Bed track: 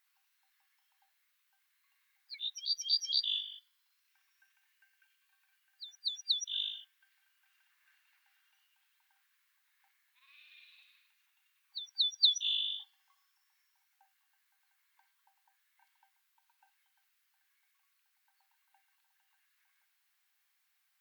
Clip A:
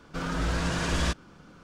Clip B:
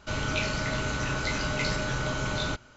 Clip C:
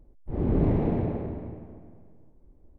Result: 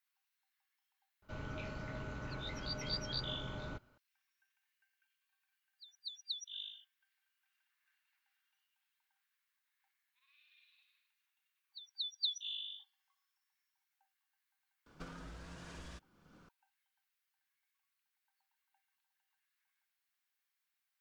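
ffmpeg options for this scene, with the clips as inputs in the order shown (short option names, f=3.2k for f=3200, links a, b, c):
-filter_complex "[0:a]volume=-10dB[a];[2:a]lowpass=f=1.2k:p=1[b];[1:a]acompressor=threshold=-38dB:ratio=10:attack=55:release=741:knee=1:detection=peak[c];[b]atrim=end=2.76,asetpts=PTS-STARTPTS,volume=-13dB,afade=t=in:d=0.004:c=hsin,afade=t=out:st=2.756:d=0.004:c=hsin,adelay=1220[d];[c]atrim=end=1.63,asetpts=PTS-STARTPTS,volume=-10.5dB,afade=t=in:d=0.004:c=hsin,afade=t=out:st=1.626:d=0.004:c=hsin,adelay=14860[e];[a][d][e]amix=inputs=3:normalize=0"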